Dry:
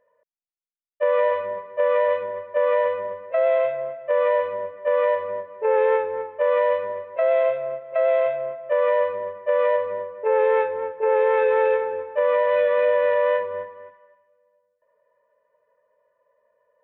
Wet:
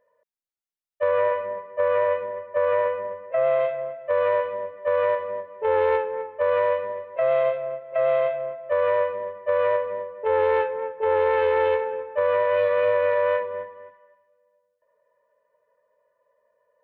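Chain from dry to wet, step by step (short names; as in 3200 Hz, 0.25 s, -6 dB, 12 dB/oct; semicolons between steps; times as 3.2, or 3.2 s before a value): 1.09–3.59 LPF 2900 Hz 12 dB/oct; Doppler distortion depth 0.11 ms; gain -1.5 dB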